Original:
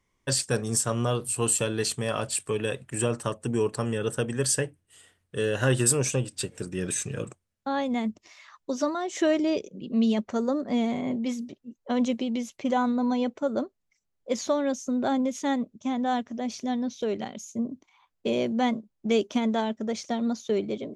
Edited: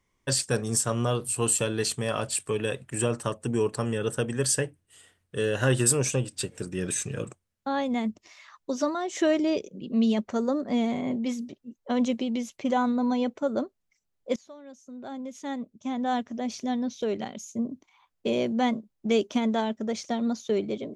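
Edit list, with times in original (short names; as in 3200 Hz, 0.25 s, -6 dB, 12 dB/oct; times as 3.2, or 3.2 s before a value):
14.36–16.18 fade in quadratic, from -22 dB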